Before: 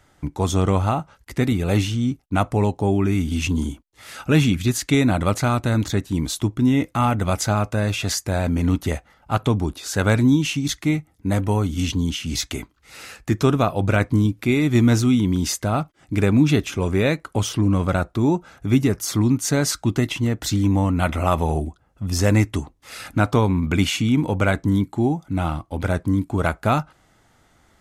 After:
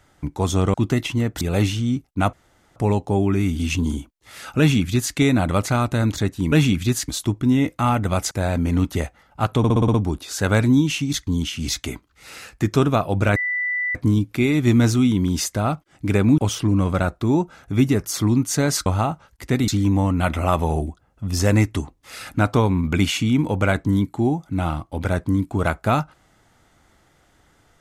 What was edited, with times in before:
0.74–1.56 s: swap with 19.80–20.47 s
2.48 s: insert room tone 0.43 s
4.31–4.87 s: copy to 6.24 s
7.47–8.22 s: delete
9.49 s: stutter 0.06 s, 7 plays
10.82–11.94 s: delete
14.03 s: add tone 1.98 kHz -20.5 dBFS 0.59 s
16.46–17.32 s: delete

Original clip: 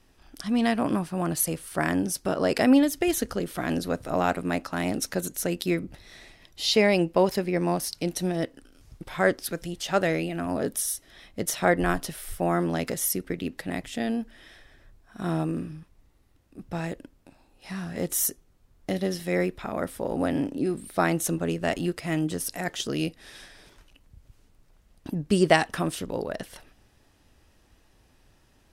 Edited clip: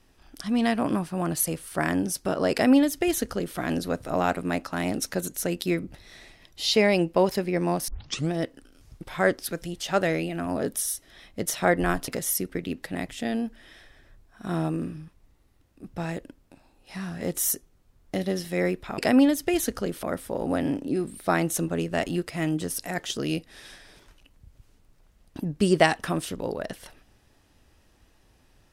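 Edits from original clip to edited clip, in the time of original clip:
2.52–3.57 s: copy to 19.73 s
7.88 s: tape start 0.43 s
12.08–12.83 s: delete

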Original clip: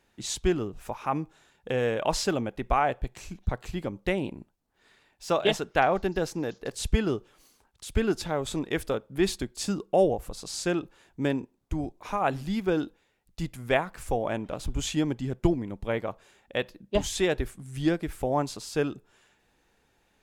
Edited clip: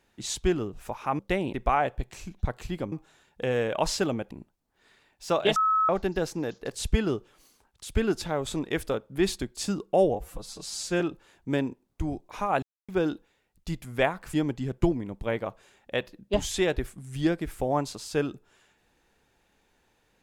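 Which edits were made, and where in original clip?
1.19–2.58 s: swap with 3.96–4.31 s
5.56–5.89 s: bleep 1.29 kHz -20 dBFS
10.15–10.72 s: stretch 1.5×
12.34–12.60 s: mute
14.05–14.95 s: delete

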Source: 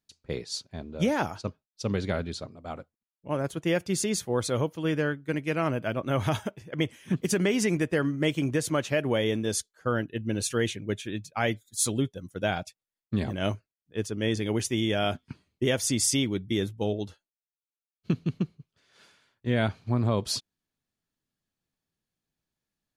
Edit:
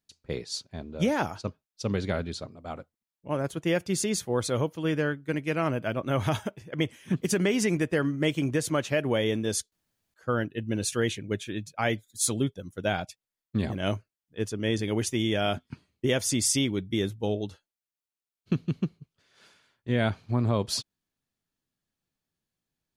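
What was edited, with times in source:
9.72 s: insert room tone 0.42 s

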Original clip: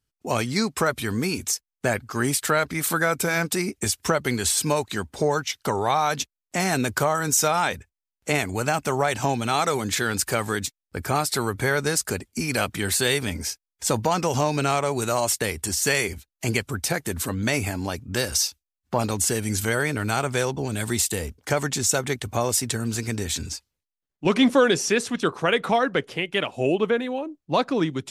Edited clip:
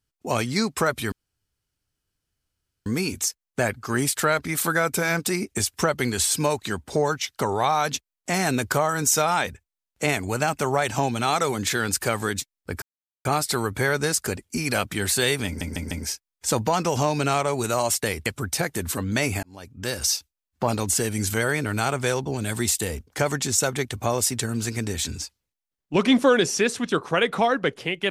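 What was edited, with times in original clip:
1.12 s: insert room tone 1.74 s
11.08 s: insert silence 0.43 s
13.29 s: stutter 0.15 s, 4 plays
15.64–16.57 s: delete
17.74–18.43 s: fade in

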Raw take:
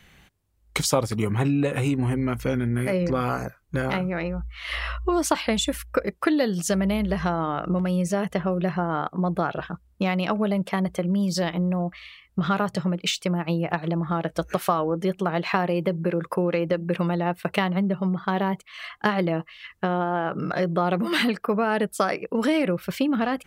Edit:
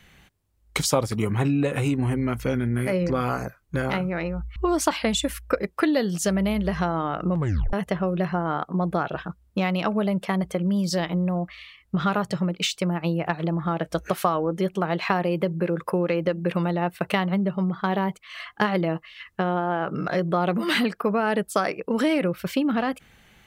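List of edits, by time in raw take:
4.56–5.00 s: delete
7.78 s: tape stop 0.39 s

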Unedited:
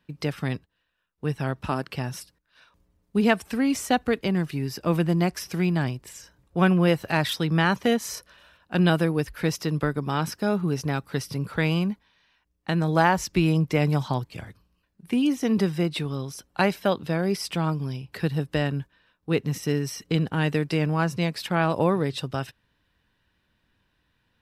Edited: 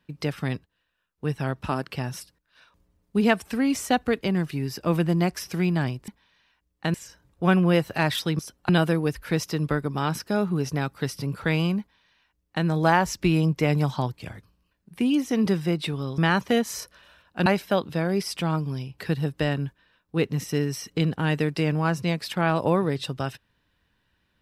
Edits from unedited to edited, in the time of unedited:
7.53–8.81 s: swap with 16.30–16.60 s
11.92–12.78 s: copy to 6.08 s

